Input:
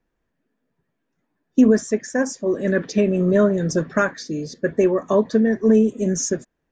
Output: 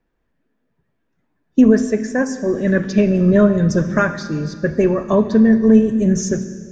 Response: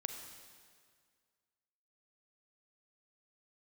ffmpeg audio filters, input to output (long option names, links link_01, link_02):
-filter_complex "[0:a]asplit=2[link_01][link_02];[link_02]asubboost=boost=6.5:cutoff=180[link_03];[1:a]atrim=start_sample=2205,lowpass=5400[link_04];[link_03][link_04]afir=irnorm=-1:irlink=0,volume=1.5dB[link_05];[link_01][link_05]amix=inputs=2:normalize=0,volume=-2.5dB"